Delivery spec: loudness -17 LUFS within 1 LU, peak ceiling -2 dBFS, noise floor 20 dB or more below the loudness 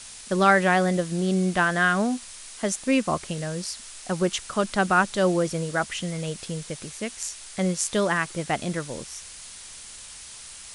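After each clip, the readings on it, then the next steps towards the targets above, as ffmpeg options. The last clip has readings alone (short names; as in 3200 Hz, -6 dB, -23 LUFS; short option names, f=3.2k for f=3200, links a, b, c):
noise floor -43 dBFS; noise floor target -45 dBFS; loudness -25.0 LUFS; peak -5.0 dBFS; loudness target -17.0 LUFS
-> -af "afftdn=nr=6:nf=-43"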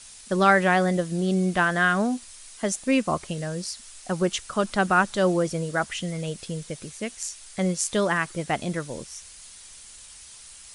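noise floor -46 dBFS; loudness -25.0 LUFS; peak -5.0 dBFS; loudness target -17.0 LUFS
-> -af "volume=8dB,alimiter=limit=-2dB:level=0:latency=1"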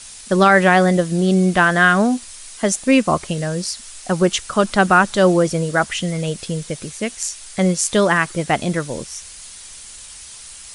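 loudness -17.5 LUFS; peak -2.0 dBFS; noise floor -38 dBFS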